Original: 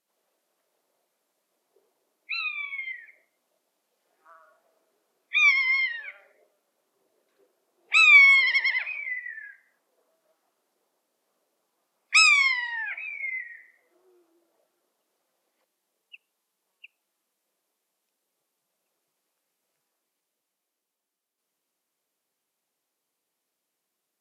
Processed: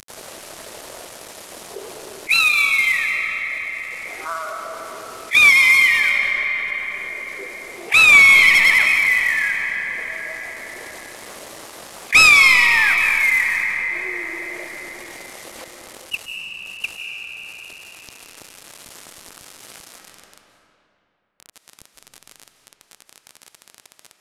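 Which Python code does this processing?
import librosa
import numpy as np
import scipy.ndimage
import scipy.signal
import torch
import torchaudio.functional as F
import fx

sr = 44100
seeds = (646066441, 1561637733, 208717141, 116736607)

y = fx.cvsd(x, sr, bps=64000)
y = fx.rider(y, sr, range_db=4, speed_s=2.0)
y = fx.rev_freeverb(y, sr, rt60_s=3.0, hf_ratio=0.65, predelay_ms=120, drr_db=7.5)
y = fx.env_flatten(y, sr, amount_pct=50)
y = F.gain(torch.from_numpy(y), 3.5).numpy()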